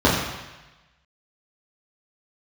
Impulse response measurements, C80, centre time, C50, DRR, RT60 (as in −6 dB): 4.5 dB, 60 ms, 2.5 dB, −7.5 dB, 1.1 s